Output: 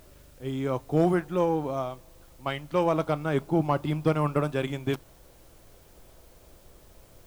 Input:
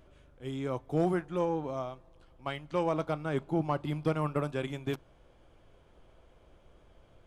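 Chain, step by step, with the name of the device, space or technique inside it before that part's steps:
plain cassette with noise reduction switched in (one half of a high-frequency compander decoder only; tape wow and flutter 28 cents; white noise bed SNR 32 dB)
level +5.5 dB

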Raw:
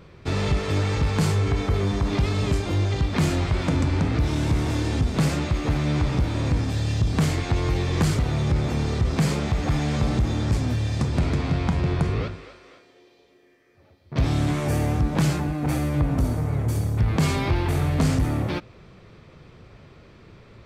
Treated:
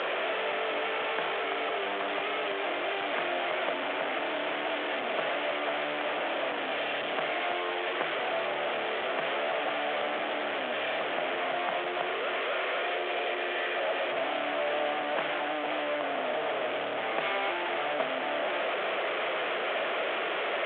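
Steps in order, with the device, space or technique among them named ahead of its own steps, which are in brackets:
digital answering machine (band-pass filter 400–3,200 Hz; linear delta modulator 16 kbit/s, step −23 dBFS; loudspeaker in its box 460–4,200 Hz, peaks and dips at 650 Hz +8 dB, 970 Hz −4 dB, 3,300 Hz +6 dB)
level −1.5 dB

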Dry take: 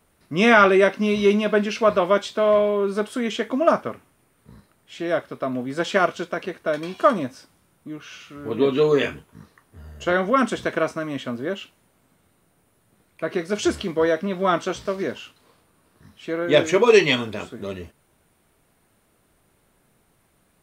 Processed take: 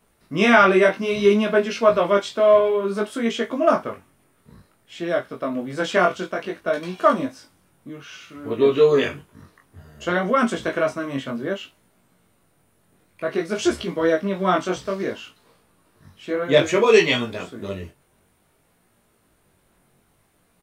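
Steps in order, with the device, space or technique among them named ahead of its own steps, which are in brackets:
double-tracked vocal (double-tracking delay 22 ms −11 dB; chorus effect 0.58 Hz, delay 17 ms, depth 5.1 ms)
level +3 dB

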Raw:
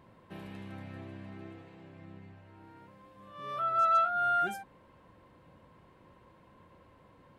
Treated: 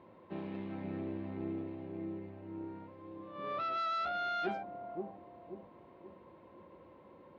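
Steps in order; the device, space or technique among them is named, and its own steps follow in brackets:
analogue delay pedal into a guitar amplifier (bucket-brigade delay 530 ms, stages 2,048, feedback 49%, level −5 dB; tube saturation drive 34 dB, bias 0.5; loudspeaker in its box 92–3,800 Hz, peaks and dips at 130 Hz −9 dB, 350 Hz +7 dB, 550 Hz +5 dB, 900 Hz +3 dB, 1,600 Hz −5 dB, 3,000 Hz −4 dB)
dynamic equaliser 220 Hz, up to +5 dB, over −56 dBFS, Q 0.93
level +1.5 dB

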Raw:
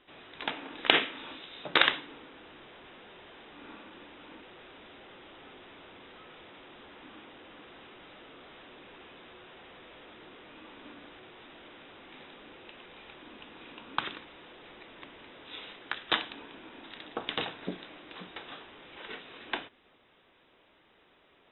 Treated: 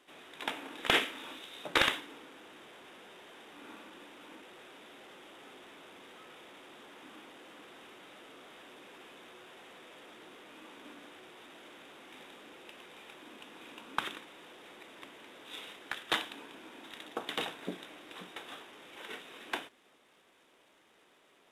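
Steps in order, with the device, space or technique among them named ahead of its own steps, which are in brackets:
early wireless headset (high-pass filter 180 Hz 12 dB per octave; variable-slope delta modulation 64 kbit/s)
level −1.5 dB

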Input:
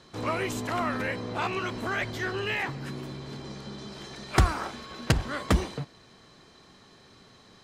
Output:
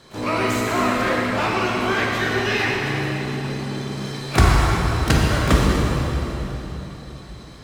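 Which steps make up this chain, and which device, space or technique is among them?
shimmer-style reverb (pitch-shifted copies added +12 semitones −11 dB; convolution reverb RT60 3.8 s, pre-delay 12 ms, DRR −4 dB)
level +4 dB

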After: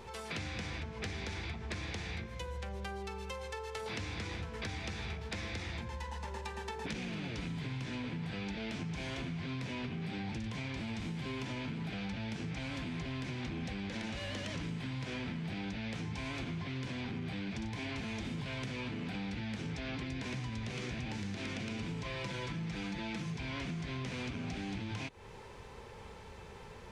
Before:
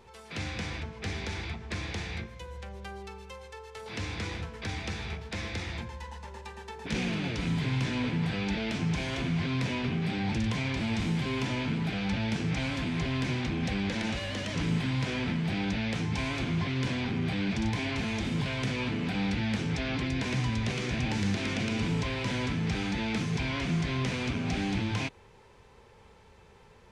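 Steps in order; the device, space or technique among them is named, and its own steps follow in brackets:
0:22.04–0:23.34: comb filter 5.9 ms
serial compression, leveller first (downward compressor 2.5 to 1, threshold −32 dBFS, peak gain reduction 6 dB; downward compressor 5 to 1, threshold −44 dBFS, peak gain reduction 13 dB)
level +6 dB

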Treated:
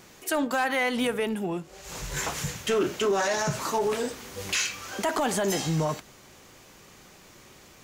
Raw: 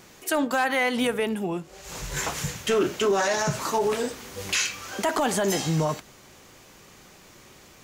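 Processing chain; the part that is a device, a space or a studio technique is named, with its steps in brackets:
parallel distortion (in parallel at −12 dB: hard clipping −28 dBFS, distortion −6 dB)
on the sum: level −3 dB

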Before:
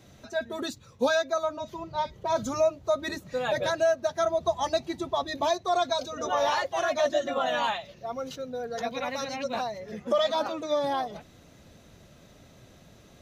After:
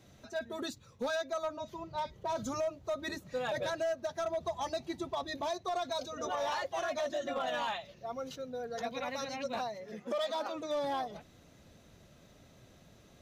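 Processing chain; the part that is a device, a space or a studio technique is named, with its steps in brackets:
limiter into clipper (brickwall limiter −20 dBFS, peak gain reduction 5.5 dB; hard clipping −23 dBFS, distortion −21 dB)
0:09.68–0:10.54: high-pass filter 120 Hz → 310 Hz 12 dB per octave
level −5.5 dB

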